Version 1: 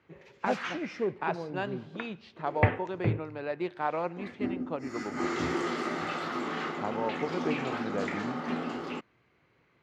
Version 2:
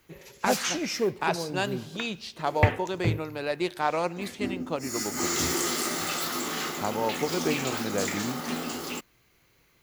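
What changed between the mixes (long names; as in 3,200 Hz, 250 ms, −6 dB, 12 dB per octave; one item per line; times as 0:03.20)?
speech +4.0 dB
master: remove band-pass filter 100–2,100 Hz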